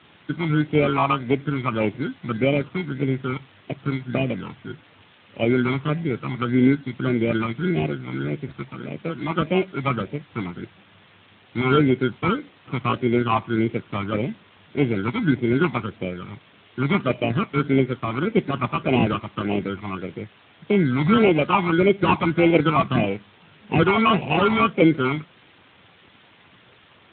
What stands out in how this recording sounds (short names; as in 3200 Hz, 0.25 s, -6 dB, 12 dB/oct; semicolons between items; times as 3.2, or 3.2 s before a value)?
aliases and images of a low sample rate 1800 Hz, jitter 0%; phasing stages 12, 1.7 Hz, lowest notch 480–1300 Hz; a quantiser's noise floor 8-bit, dither triangular; Speex